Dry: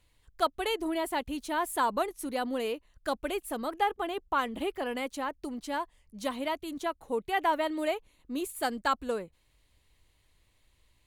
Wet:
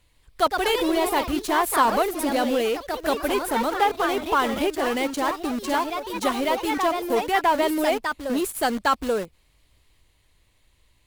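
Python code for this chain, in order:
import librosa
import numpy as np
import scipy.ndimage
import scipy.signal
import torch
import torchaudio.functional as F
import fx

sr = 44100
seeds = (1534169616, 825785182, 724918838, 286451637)

p1 = fx.quant_companded(x, sr, bits=2)
p2 = x + F.gain(torch.from_numpy(p1), -11.0).numpy()
p3 = fx.echo_pitch(p2, sr, ms=158, semitones=2, count=3, db_per_echo=-6.0)
y = F.gain(torch.from_numpy(p3), 5.0).numpy()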